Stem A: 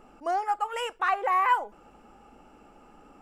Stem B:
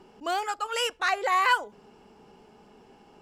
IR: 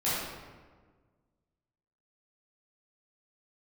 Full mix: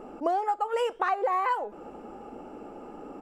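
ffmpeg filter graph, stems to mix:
-filter_complex "[0:a]equalizer=f=410:t=o:w=2.6:g=15,acompressor=threshold=-24dB:ratio=10,volume=0dB[a];[1:a]flanger=delay=9.6:depth=7.4:regen=90:speed=0.69:shape=triangular,adelay=3.8,volume=-14.5dB[b];[a][b]amix=inputs=2:normalize=0"

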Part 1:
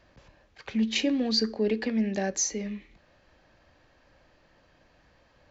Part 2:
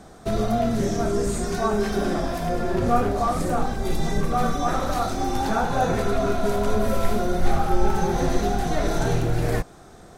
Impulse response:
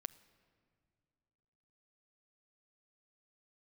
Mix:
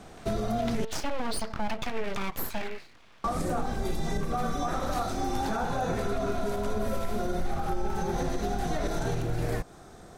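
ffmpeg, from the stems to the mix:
-filter_complex "[0:a]equalizer=f=1.2k:w=0.37:g=13.5,aeval=exprs='abs(val(0))':c=same,volume=-2dB[a];[1:a]volume=-2.5dB,asplit=3[b][c][d];[b]atrim=end=0.85,asetpts=PTS-STARTPTS,afade=t=out:st=0.846:d=0.004:c=hsin[e];[c]atrim=start=0.85:end=3.24,asetpts=PTS-STARTPTS,volume=0[f];[d]atrim=start=3.24,asetpts=PTS-STARTPTS,afade=t=in:d=0.004:c=hsin[g];[e][f][g]concat=n=3:v=0:a=1[h];[a][h]amix=inputs=2:normalize=0,alimiter=limit=-20dB:level=0:latency=1:release=134"

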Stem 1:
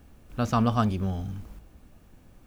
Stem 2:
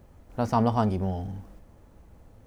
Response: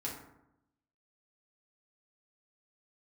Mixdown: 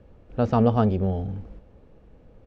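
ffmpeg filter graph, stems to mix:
-filter_complex "[0:a]volume=-4dB[a];[1:a]equalizer=f=470:t=o:w=1:g=13.5,adelay=0.4,volume=-8.5dB[b];[a][b]amix=inputs=2:normalize=0,lowpass=3.5k,lowshelf=f=340:g=4"

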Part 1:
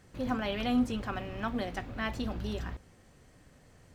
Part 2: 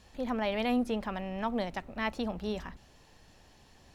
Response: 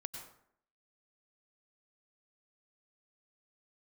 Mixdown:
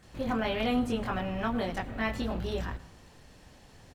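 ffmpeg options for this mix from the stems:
-filter_complex "[0:a]equalizer=f=5.5k:w=2.1:g=-4.5,volume=-2dB,asplit=2[a][b];[b]volume=-3.5dB[c];[1:a]alimiter=level_in=2.5dB:limit=-24dB:level=0:latency=1:release=116,volume=-2.5dB,volume=-1,adelay=27,volume=1.5dB[d];[2:a]atrim=start_sample=2205[e];[c][e]afir=irnorm=-1:irlink=0[f];[a][d][f]amix=inputs=3:normalize=0"

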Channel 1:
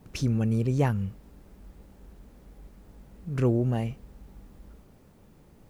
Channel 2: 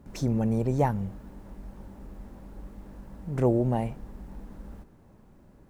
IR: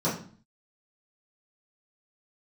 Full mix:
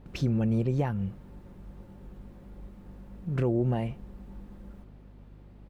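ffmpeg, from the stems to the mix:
-filter_complex "[0:a]lowpass=f=4.1k:w=0.5412,lowpass=f=4.1k:w=1.3066,aeval=exprs='val(0)+0.00398*(sin(2*PI*50*n/s)+sin(2*PI*2*50*n/s)/2+sin(2*PI*3*50*n/s)/3+sin(2*PI*4*50*n/s)/4+sin(2*PI*5*50*n/s)/5)':c=same,volume=-1.5dB[a];[1:a]aecho=1:1:5.7:0.87,volume=-10dB[b];[a][b]amix=inputs=2:normalize=0,alimiter=limit=-17.5dB:level=0:latency=1:release=273"

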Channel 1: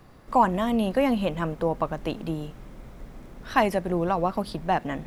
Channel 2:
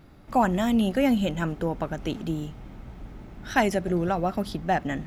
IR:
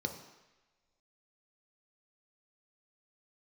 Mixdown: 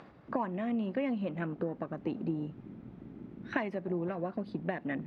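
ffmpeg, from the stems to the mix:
-filter_complex "[0:a]volume=-13.5dB,asplit=2[a][b];[1:a]afwtdn=0.02,acompressor=threshold=-25dB:ratio=6,volume=2.5dB[c];[b]apad=whole_len=223526[d];[c][d]sidechaincompress=threshold=-44dB:ratio=4:attack=46:release=458[e];[a][e]amix=inputs=2:normalize=0,acompressor=mode=upward:threshold=-38dB:ratio=2.5,highpass=200,lowpass=2.9k"

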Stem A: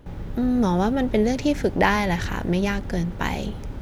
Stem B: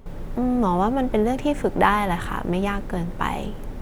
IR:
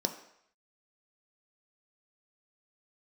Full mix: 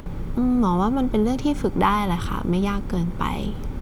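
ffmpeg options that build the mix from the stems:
-filter_complex "[0:a]volume=2dB[a];[1:a]aecho=1:1:0.9:0.5,volume=-2.5dB,asplit=2[b][c];[c]apad=whole_len=168300[d];[a][d]sidechaincompress=threshold=-31dB:ratio=8:attack=16:release=305[e];[e][b]amix=inputs=2:normalize=0,acompressor=mode=upward:threshold=-34dB:ratio=2.5"

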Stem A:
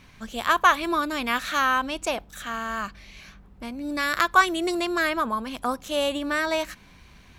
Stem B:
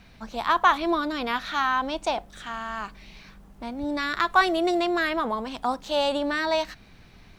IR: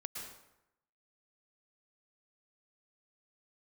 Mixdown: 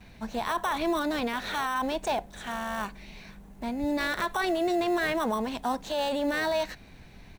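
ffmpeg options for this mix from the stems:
-filter_complex "[0:a]acrusher=samples=19:mix=1:aa=0.000001,volume=-10dB[a];[1:a]adelay=5.1,volume=1.5dB[b];[a][b]amix=inputs=2:normalize=0,equalizer=f=1.25k:t=o:w=0.33:g=-7,equalizer=f=3.15k:t=o:w=0.33:g=-4,equalizer=f=5k:t=o:w=0.33:g=-5,alimiter=limit=-20dB:level=0:latency=1:release=14"

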